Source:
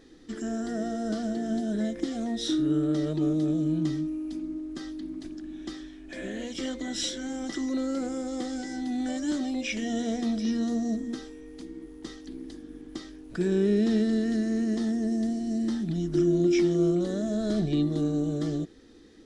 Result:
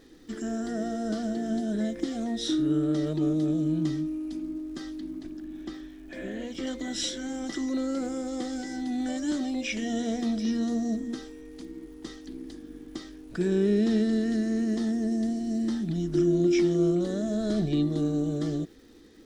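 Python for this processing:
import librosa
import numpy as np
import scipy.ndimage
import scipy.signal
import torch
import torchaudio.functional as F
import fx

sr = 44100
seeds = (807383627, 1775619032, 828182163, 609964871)

y = fx.high_shelf(x, sr, hz=3700.0, db=-9.5, at=(5.1, 6.67))
y = fx.dmg_crackle(y, sr, seeds[0], per_s=520.0, level_db=-55.0)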